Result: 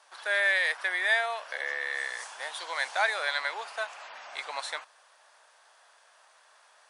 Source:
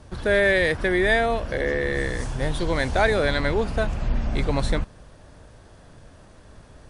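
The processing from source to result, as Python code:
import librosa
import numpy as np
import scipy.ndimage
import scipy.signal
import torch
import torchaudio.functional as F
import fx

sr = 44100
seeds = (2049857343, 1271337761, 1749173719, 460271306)

y = scipy.signal.sosfilt(scipy.signal.butter(4, 800.0, 'highpass', fs=sr, output='sos'), x)
y = F.gain(torch.from_numpy(y), -2.5).numpy()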